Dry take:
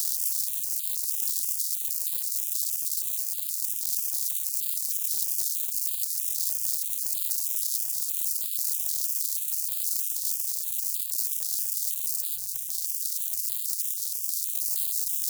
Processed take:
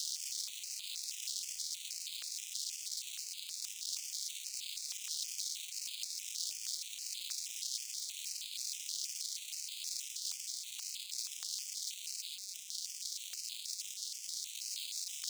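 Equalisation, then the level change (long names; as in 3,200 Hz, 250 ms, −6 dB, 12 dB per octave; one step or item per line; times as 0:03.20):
high-pass filter 720 Hz 12 dB per octave
high-frequency loss of the air 150 metres
+5.5 dB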